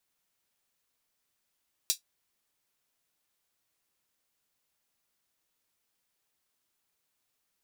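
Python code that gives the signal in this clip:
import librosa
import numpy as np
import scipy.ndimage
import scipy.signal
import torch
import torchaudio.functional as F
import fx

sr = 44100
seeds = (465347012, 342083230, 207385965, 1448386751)

y = fx.drum_hat(sr, length_s=0.24, from_hz=4300.0, decay_s=0.12)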